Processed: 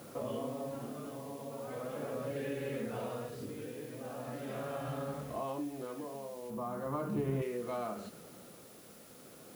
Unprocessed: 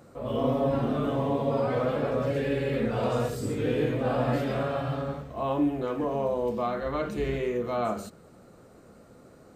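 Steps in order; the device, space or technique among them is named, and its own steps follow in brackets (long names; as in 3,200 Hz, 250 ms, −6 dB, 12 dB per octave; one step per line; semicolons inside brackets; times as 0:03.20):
medium wave at night (band-pass filter 130–4,300 Hz; downward compressor, threshold −38 dBFS, peak gain reduction 15.5 dB; amplitude tremolo 0.39 Hz, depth 55%; steady tone 10,000 Hz −67 dBFS; white noise bed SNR 18 dB)
0:06.50–0:07.42: graphic EQ with 10 bands 125 Hz +12 dB, 250 Hz +5 dB, 1,000 Hz +9 dB, 2,000 Hz −6 dB, 4,000 Hz −5 dB, 8,000 Hz −3 dB
level +2.5 dB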